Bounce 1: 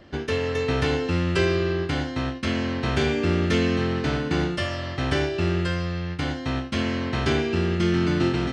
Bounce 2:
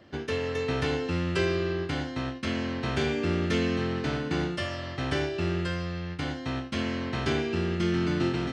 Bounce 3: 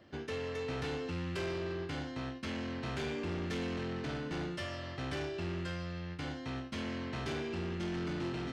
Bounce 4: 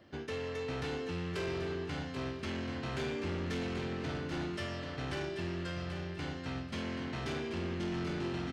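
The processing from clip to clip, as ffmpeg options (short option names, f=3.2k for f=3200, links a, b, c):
-af "highpass=74,volume=-4.5dB"
-af "asoftclip=type=tanh:threshold=-27.5dB,volume=-5.5dB"
-af "aecho=1:1:785|1570|2355:0.398|0.115|0.0335"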